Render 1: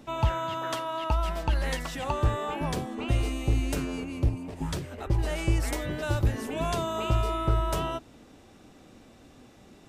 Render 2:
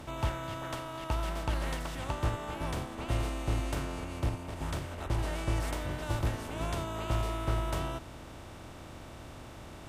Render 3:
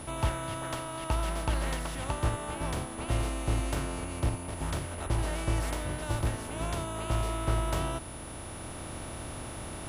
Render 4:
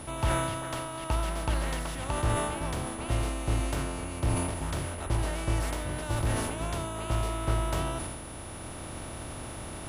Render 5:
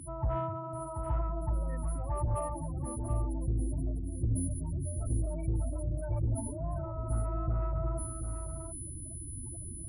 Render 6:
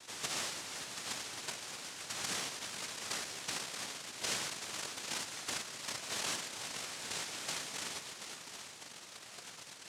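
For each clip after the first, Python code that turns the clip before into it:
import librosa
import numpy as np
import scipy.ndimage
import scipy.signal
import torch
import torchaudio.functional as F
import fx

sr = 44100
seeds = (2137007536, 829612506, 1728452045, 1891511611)

y1 = fx.bin_compress(x, sr, power=0.4)
y1 = fx.upward_expand(y1, sr, threshold_db=-29.0, expansion=1.5)
y1 = F.gain(torch.from_numpy(y1), -8.5).numpy()
y2 = fx.rider(y1, sr, range_db=5, speed_s=2.0)
y2 = y2 + 10.0 ** (-48.0 / 20.0) * np.sin(2.0 * np.pi * 10000.0 * np.arange(len(y2)) / sr)
y2 = F.gain(torch.from_numpy(y2), 1.5).numpy()
y3 = fx.sustainer(y2, sr, db_per_s=35.0)
y4 = fx.spec_topn(y3, sr, count=8)
y4 = 10.0 ** (-23.5 / 20.0) * np.tanh(y4 / 10.0 ** (-23.5 / 20.0))
y4 = y4 + 10.0 ** (-7.5 / 20.0) * np.pad(y4, (int(733 * sr / 1000.0), 0))[:len(y4)]
y5 = fx.noise_vocoder(y4, sr, seeds[0], bands=1)
y5 = F.gain(torch.from_numpy(y5), -4.5).numpy()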